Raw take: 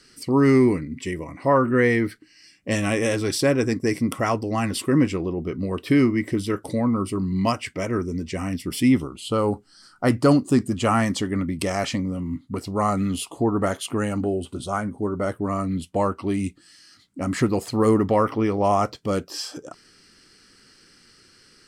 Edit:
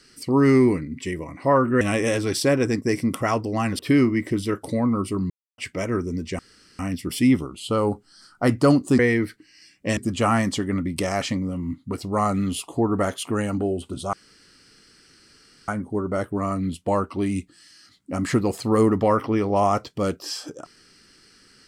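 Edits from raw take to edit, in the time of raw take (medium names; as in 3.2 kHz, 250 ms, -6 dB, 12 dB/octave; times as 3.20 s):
1.81–2.79 s: move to 10.60 s
4.77–5.80 s: delete
7.31–7.59 s: mute
8.40 s: insert room tone 0.40 s
14.76 s: insert room tone 1.55 s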